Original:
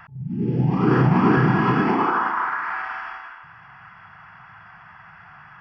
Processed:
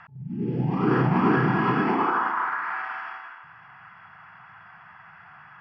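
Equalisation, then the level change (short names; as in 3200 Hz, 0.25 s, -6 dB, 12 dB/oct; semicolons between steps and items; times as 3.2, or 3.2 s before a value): LPF 4900 Hz 12 dB/oct; low shelf 87 Hz -12 dB; -2.5 dB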